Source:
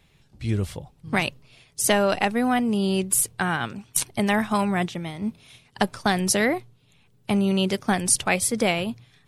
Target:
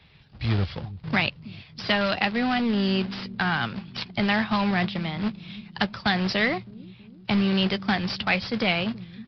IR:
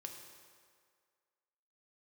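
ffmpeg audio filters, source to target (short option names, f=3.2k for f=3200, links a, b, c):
-filter_complex "[0:a]highpass=46,equalizer=f=370:t=o:w=1.6:g=-5.5,asplit=2[a][b];[b]acompressor=threshold=-35dB:ratio=8,volume=0dB[c];[a][c]amix=inputs=2:normalize=0,acrusher=bits=2:mode=log:mix=0:aa=0.000001,acrossover=split=290|1200[d][e][f];[d]aecho=1:1:324|648|972|1296|1620|1944:0.237|0.135|0.077|0.0439|0.025|0.0143[g];[e]asoftclip=type=hard:threshold=-27dB[h];[f]asplit=2[i][j];[j]adelay=13,volume=-11dB[k];[i][k]amix=inputs=2:normalize=0[l];[g][h][l]amix=inputs=3:normalize=0,aresample=11025,aresample=44100"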